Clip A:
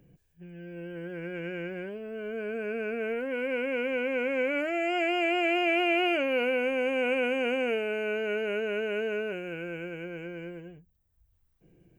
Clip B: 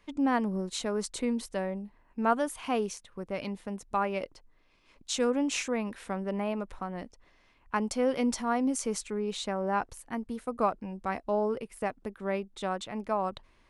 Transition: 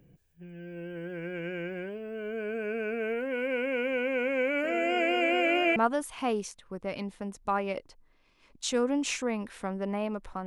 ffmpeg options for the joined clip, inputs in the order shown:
-filter_complex "[0:a]asplit=3[a][b][c];[a]afade=t=out:st=4.63:d=0.02[d];[b]asplit=2[e][f];[f]adelay=968,lowpass=f=4.7k:p=1,volume=-6.5dB,asplit=2[g][h];[h]adelay=968,lowpass=f=4.7k:p=1,volume=0.44,asplit=2[i][j];[j]adelay=968,lowpass=f=4.7k:p=1,volume=0.44,asplit=2[k][l];[l]adelay=968,lowpass=f=4.7k:p=1,volume=0.44,asplit=2[m][n];[n]adelay=968,lowpass=f=4.7k:p=1,volume=0.44[o];[e][g][i][k][m][o]amix=inputs=6:normalize=0,afade=t=in:st=4.63:d=0.02,afade=t=out:st=5.76:d=0.02[p];[c]afade=t=in:st=5.76:d=0.02[q];[d][p][q]amix=inputs=3:normalize=0,apad=whole_dur=10.46,atrim=end=10.46,atrim=end=5.762[r];[1:a]atrim=start=2.218:end=6.92[s];[r][s]acrossfade=d=0.004:c1=hsin:c2=hsin"

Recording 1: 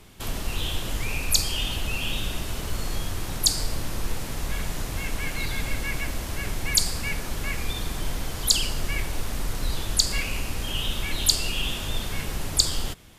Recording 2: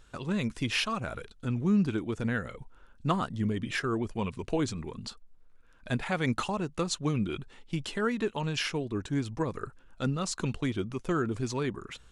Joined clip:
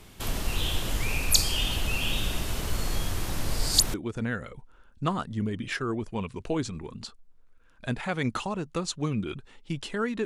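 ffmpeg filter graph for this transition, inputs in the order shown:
-filter_complex "[0:a]apad=whole_dur=10.25,atrim=end=10.25,asplit=2[a][b];[a]atrim=end=3.322[c];[b]atrim=start=3.318:end=3.942,asetpts=PTS-STARTPTS,areverse[d];[1:a]atrim=start=1.968:end=8.28[e];[c][d]acrossfade=d=0.004:c1=hsin:c2=hsin[f];[f][e]acrossfade=d=0.004:c1=hsin:c2=hsin"

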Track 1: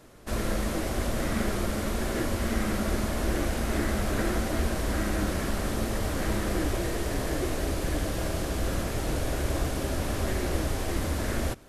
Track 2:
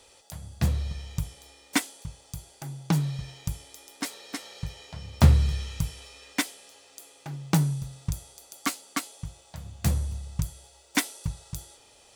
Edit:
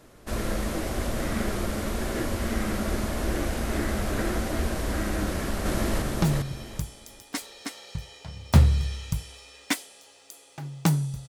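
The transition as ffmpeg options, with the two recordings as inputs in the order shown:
-filter_complex "[0:a]apad=whole_dur=11.28,atrim=end=11.28,atrim=end=6.022[a];[1:a]atrim=start=2.698:end=7.96[b];[a][b]acrossfade=d=0.004:c1=hsin:c2=hsin,asplit=2[c][d];[d]afade=t=in:st=5.25:d=0.01,afade=t=out:st=6.02:d=0.01,aecho=0:1:400|800|1200|1600:0.944061|0.236015|0.0590038|0.014751[e];[c][e]amix=inputs=2:normalize=0"

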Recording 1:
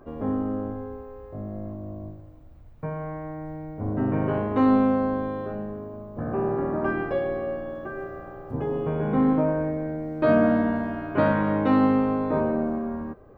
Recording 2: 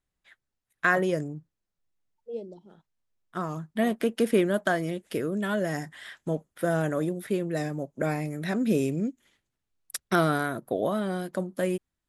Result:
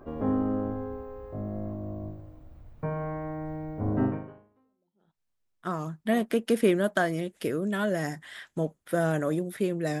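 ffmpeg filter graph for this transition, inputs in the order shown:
-filter_complex "[0:a]apad=whole_dur=10,atrim=end=10,atrim=end=5.21,asetpts=PTS-STARTPTS[a];[1:a]atrim=start=1.75:end=7.7,asetpts=PTS-STARTPTS[b];[a][b]acrossfade=d=1.16:c1=exp:c2=exp"

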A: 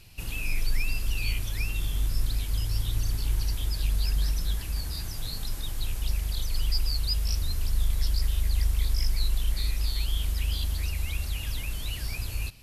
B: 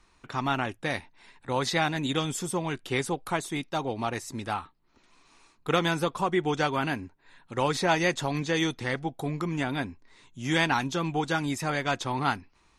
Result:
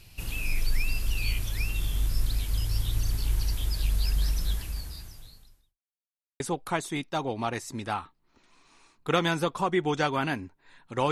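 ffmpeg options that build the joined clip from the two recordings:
-filter_complex "[0:a]apad=whole_dur=11.11,atrim=end=11.11,asplit=2[a][b];[a]atrim=end=5.79,asetpts=PTS-STARTPTS,afade=t=out:st=4.51:d=1.28:c=qua[c];[b]atrim=start=5.79:end=6.4,asetpts=PTS-STARTPTS,volume=0[d];[1:a]atrim=start=3:end=7.71,asetpts=PTS-STARTPTS,afade=t=in:d=0.004:c=hsin[e];[c][d][e]concat=n=3:v=0:a=1"

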